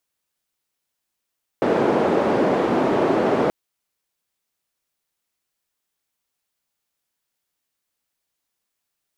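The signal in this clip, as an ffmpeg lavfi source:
-f lavfi -i "anoisesrc=c=white:d=1.88:r=44100:seed=1,highpass=f=280,lowpass=f=460,volume=5.6dB"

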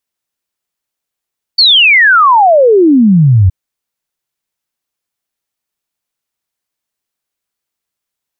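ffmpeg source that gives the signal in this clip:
-f lavfi -i "aevalsrc='0.708*clip(min(t,1.92-t)/0.01,0,1)*sin(2*PI*4600*1.92/log(87/4600)*(exp(log(87/4600)*t/1.92)-1))':d=1.92:s=44100"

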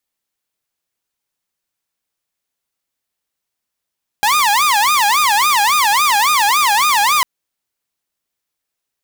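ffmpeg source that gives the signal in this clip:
-f lavfi -i "aevalsrc='0.376*(2*mod((1019.5*t-210.5/(2*PI*3.6)*sin(2*PI*3.6*t)),1)-1)':d=3:s=44100"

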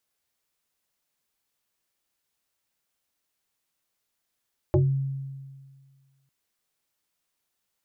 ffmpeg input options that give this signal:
-f lavfi -i "aevalsrc='0.168*pow(10,-3*t/1.76)*sin(2*PI*136*t+2.3*pow(10,-3*t/0.27)*sin(2*PI*1.7*136*t))':d=1.55:s=44100"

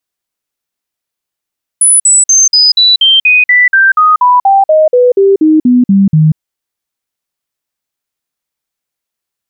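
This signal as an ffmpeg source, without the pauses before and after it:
-f lavfi -i "aevalsrc='0.708*clip(min(mod(t,0.24),0.19-mod(t,0.24))/0.005,0,1)*sin(2*PI*9970*pow(2,-floor(t/0.24)/3)*mod(t,0.24))':d=4.56:s=44100"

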